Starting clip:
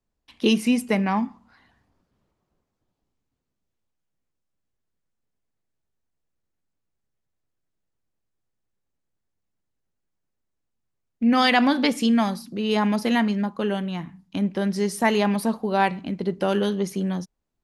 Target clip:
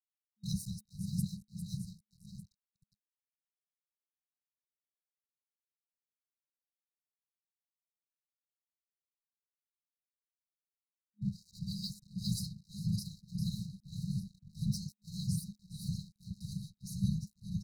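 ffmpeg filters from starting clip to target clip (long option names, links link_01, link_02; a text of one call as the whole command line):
ffmpeg -i in.wav -af "highpass=frequency=140:poles=1,aecho=1:1:401|802|1203|1604|2005:0.473|0.218|0.1|0.0461|0.0212,areverse,acompressor=threshold=-27dB:ratio=16,areverse,afftfilt=real='hypot(re,im)*cos(2*PI*random(0))':imag='hypot(re,im)*sin(2*PI*random(1))':win_size=512:overlap=0.75,tremolo=f=1.7:d=0.91,aeval=exprs='sgn(val(0))*max(abs(val(0))-0.00211,0)':channel_layout=same,afftfilt=real='re*(1-between(b*sr/4096,210,3800))':imag='im*(1-between(b*sr/4096,210,3800))':win_size=4096:overlap=0.75,volume=9.5dB" out.wav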